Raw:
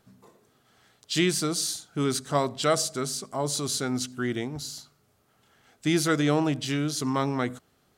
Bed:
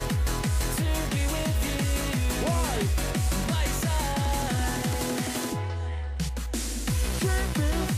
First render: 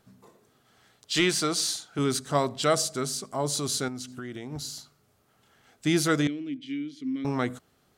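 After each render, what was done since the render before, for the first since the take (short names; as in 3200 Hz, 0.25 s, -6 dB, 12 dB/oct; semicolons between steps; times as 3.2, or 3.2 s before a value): 1.14–1.99 overdrive pedal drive 10 dB, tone 4400 Hz, clips at -11 dBFS; 3.88–4.52 compressor 5:1, threshold -34 dBFS; 6.27–7.25 vowel filter i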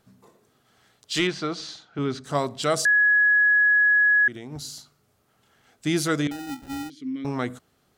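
1.27–2.24 air absorption 200 m; 2.85–4.28 bleep 1680 Hz -15 dBFS; 6.31–6.9 sample-rate reducer 1100 Hz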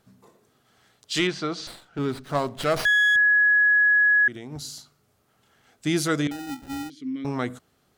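1.67–3.16 running maximum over 5 samples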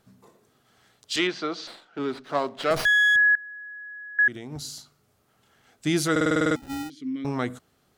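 1.16–2.71 three-band isolator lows -19 dB, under 220 Hz, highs -14 dB, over 6000 Hz; 3.35–4.19 Gaussian blur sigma 9.4 samples; 6.11 stutter in place 0.05 s, 9 plays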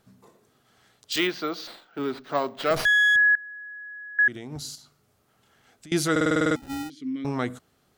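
1.12–2.76 careless resampling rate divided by 2×, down filtered, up hold; 4.75–5.92 compressor, threshold -45 dBFS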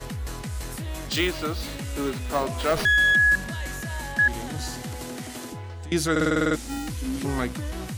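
add bed -6.5 dB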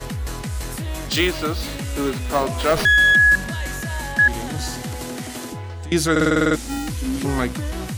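gain +5 dB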